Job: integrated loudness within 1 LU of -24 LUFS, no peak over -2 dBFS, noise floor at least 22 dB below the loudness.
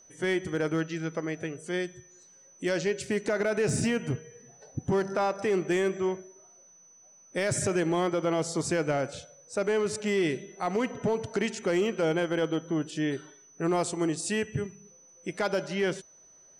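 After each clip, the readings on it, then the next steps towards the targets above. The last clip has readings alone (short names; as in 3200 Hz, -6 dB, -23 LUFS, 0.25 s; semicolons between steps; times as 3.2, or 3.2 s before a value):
clipped 0.7%; flat tops at -20.0 dBFS; steady tone 6000 Hz; tone level -54 dBFS; loudness -29.5 LUFS; peak -20.0 dBFS; loudness target -24.0 LUFS
-> clip repair -20 dBFS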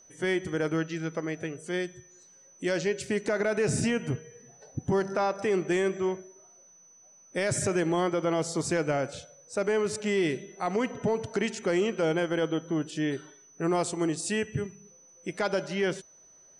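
clipped 0.0%; steady tone 6000 Hz; tone level -54 dBFS
-> notch 6000 Hz, Q 30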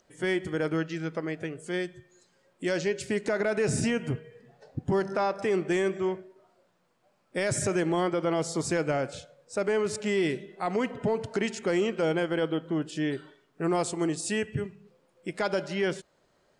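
steady tone none; loudness -29.5 LUFS; peak -16.0 dBFS; loudness target -24.0 LUFS
-> gain +5.5 dB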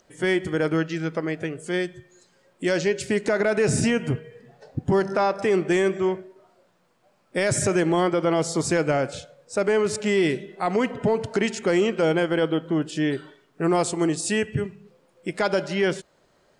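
loudness -24.0 LUFS; peak -10.5 dBFS; noise floor -63 dBFS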